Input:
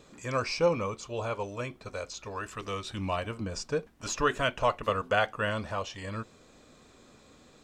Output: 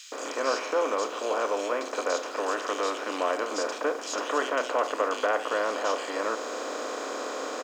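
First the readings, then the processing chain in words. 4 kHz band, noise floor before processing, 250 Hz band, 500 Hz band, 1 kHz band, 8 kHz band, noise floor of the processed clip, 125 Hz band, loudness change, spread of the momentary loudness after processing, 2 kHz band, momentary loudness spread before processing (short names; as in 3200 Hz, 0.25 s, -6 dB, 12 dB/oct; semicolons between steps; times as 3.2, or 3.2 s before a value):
+2.5 dB, -58 dBFS, +1.0 dB, +4.5 dB, +4.5 dB, +5.0 dB, -37 dBFS, under -25 dB, +3.0 dB, 6 LU, +2.5 dB, 11 LU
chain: per-bin compression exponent 0.4; in parallel at -0.5 dB: vocal rider within 5 dB; on the sum: bit-crush 9-bit; elliptic high-pass 270 Hz, stop band 50 dB; bands offset in time highs, lows 0.12 s, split 2600 Hz; gain -8 dB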